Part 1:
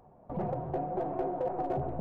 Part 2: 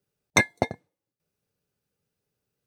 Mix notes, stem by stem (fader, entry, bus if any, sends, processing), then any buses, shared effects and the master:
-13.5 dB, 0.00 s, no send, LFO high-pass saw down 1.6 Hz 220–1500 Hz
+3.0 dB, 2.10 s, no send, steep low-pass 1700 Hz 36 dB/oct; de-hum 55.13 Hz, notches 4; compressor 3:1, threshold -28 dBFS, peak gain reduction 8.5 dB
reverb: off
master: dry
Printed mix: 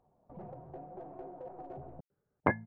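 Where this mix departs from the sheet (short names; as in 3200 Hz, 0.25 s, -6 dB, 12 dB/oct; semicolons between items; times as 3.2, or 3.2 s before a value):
stem 1: missing LFO high-pass saw down 1.6 Hz 220–1500 Hz; master: extra high shelf 3600 Hz -7.5 dB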